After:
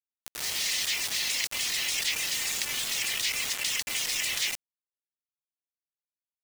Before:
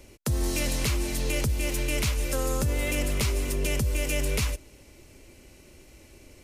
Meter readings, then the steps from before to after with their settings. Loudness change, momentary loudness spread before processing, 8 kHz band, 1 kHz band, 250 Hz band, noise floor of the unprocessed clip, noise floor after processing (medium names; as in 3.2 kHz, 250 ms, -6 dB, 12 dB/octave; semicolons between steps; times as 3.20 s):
+0.5 dB, 2 LU, +4.0 dB, -5.0 dB, -20.0 dB, -53 dBFS, under -85 dBFS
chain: spectral gate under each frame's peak -25 dB weak; low-pass 5.9 kHz 12 dB/octave; reverb removal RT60 0.6 s; elliptic high-pass 1.9 kHz, stop band 40 dB; level rider gain up to 10.5 dB; bit crusher 6-bit; level flattener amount 50%